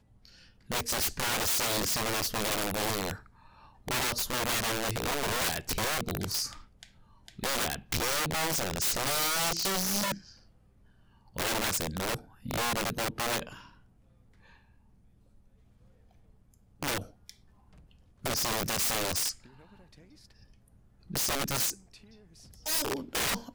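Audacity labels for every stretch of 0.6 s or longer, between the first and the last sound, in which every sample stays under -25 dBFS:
3.110000	3.880000	silence
6.450000	7.440000	silence
10.120000	11.380000	silence
13.390000	16.830000	silence
16.980000	18.260000	silence
19.300000	21.160000	silence
21.700000	22.670000	silence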